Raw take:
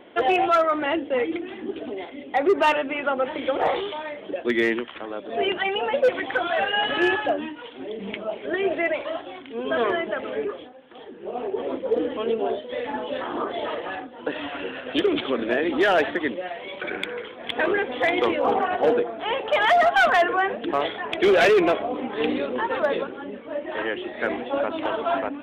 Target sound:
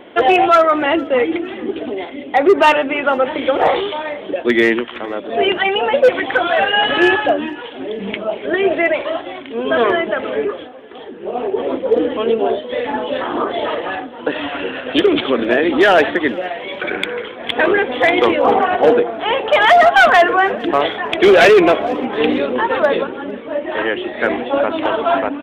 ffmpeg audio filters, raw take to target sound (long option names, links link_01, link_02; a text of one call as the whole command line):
ffmpeg -i in.wav -af "aecho=1:1:456|912:0.0668|0.0234,volume=8.5dB" out.wav